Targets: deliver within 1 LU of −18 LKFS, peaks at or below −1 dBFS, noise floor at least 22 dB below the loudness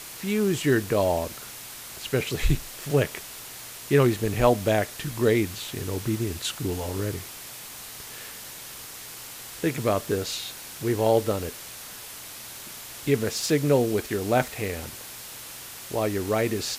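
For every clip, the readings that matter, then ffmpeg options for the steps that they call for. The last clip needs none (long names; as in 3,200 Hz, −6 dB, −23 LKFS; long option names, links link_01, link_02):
background noise floor −41 dBFS; target noise floor −48 dBFS; integrated loudness −26.0 LKFS; sample peak −6.0 dBFS; target loudness −18.0 LKFS
→ -af "afftdn=noise_reduction=7:noise_floor=-41"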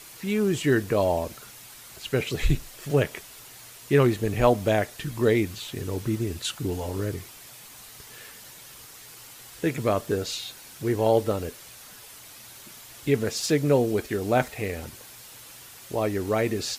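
background noise floor −46 dBFS; target noise floor −48 dBFS
→ -af "afftdn=noise_reduction=6:noise_floor=-46"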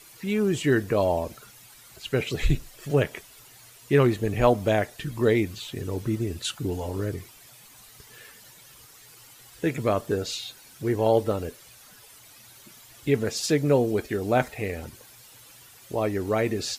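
background noise floor −51 dBFS; integrated loudness −26.0 LKFS; sample peak −6.0 dBFS; target loudness −18.0 LKFS
→ -af "volume=8dB,alimiter=limit=-1dB:level=0:latency=1"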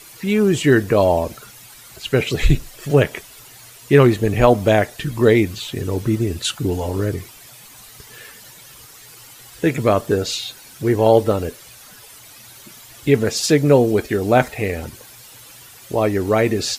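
integrated loudness −18.0 LKFS; sample peak −1.0 dBFS; background noise floor −43 dBFS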